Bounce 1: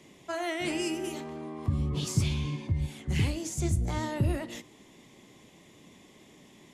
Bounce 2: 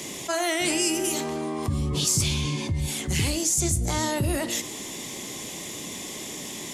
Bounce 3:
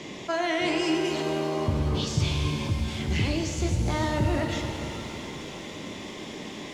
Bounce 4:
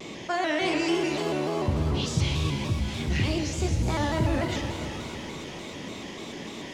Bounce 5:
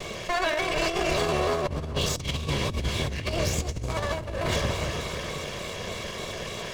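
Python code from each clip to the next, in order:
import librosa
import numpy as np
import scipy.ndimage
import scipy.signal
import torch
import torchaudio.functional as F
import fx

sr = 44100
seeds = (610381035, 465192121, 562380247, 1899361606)

y1 = fx.bass_treble(x, sr, bass_db=-4, treble_db=12)
y1 = fx.env_flatten(y1, sr, amount_pct=50)
y1 = F.gain(torch.from_numpy(y1), 2.0).numpy()
y2 = fx.air_absorb(y1, sr, metres=200.0)
y2 = fx.rev_shimmer(y2, sr, seeds[0], rt60_s=3.2, semitones=7, shimmer_db=-8, drr_db=4.0)
y3 = fx.vibrato_shape(y2, sr, shape='square', rate_hz=3.4, depth_cents=100.0)
y4 = fx.lower_of_two(y3, sr, delay_ms=1.8)
y4 = fx.over_compress(y4, sr, threshold_db=-30.0, ratio=-0.5)
y4 = F.gain(torch.from_numpy(y4), 3.5).numpy()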